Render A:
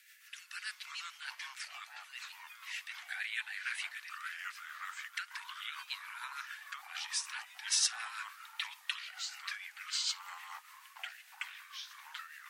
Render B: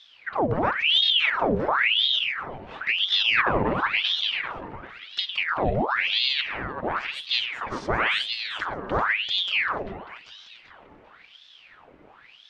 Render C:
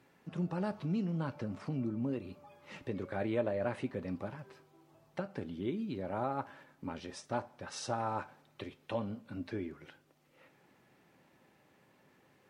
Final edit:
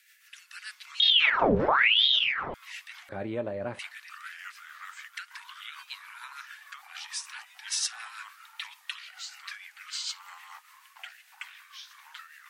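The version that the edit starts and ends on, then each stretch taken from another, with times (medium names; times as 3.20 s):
A
1.00–2.54 s: from B
3.09–3.79 s: from C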